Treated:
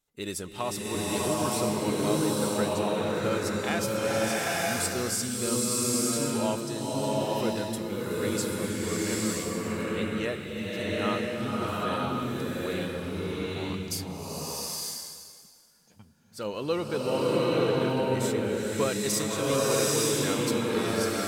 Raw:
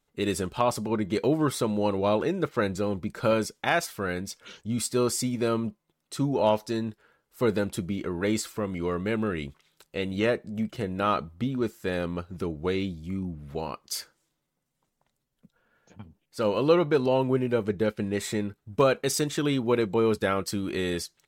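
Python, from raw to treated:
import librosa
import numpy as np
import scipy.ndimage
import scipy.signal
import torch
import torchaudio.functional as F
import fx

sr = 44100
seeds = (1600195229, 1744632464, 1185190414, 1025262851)

y = fx.high_shelf(x, sr, hz=3700.0, db=10.0)
y = fx.rev_bloom(y, sr, seeds[0], attack_ms=910, drr_db=-6.0)
y = F.gain(torch.from_numpy(y), -8.5).numpy()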